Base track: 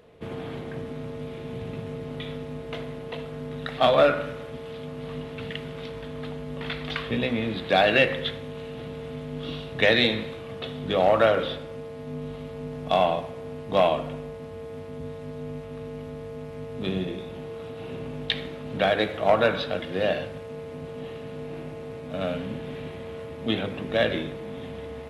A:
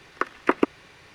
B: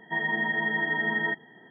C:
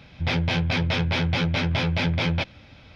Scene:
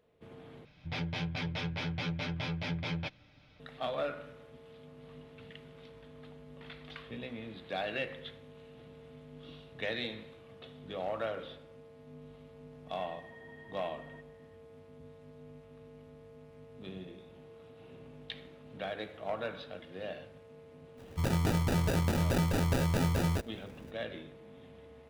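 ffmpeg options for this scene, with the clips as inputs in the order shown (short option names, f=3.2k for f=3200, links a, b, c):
-filter_complex "[3:a]asplit=2[a][b];[0:a]volume=-16.5dB[c];[a]aecho=1:1:6.7:0.41[d];[2:a]acompressor=threshold=-35dB:ratio=6:attack=3.2:release=140:knee=1:detection=peak[e];[b]acrusher=samples=41:mix=1:aa=0.000001[f];[c]asplit=2[g][h];[g]atrim=end=0.654[i];[d]atrim=end=2.95,asetpts=PTS-STARTPTS,volume=-13dB[j];[h]atrim=start=3.596[k];[e]atrim=end=1.7,asetpts=PTS-STARTPTS,volume=-17.5dB,afade=t=in:d=0.004:c=hsin,afade=t=out:st=1.696:d=0.004:c=hsin,adelay=12870[l];[f]atrim=end=2.95,asetpts=PTS-STARTPTS,volume=-5.5dB,afade=t=in:d=0.02,afade=t=out:st=2.93:d=0.02,adelay=20970[m];[i][j]acrossfade=d=0.004:c1=hsin:c2=hsin[n];[n][k]acrossfade=d=0.004:c1=hsin:c2=hsin[o];[o][l][m]amix=inputs=3:normalize=0"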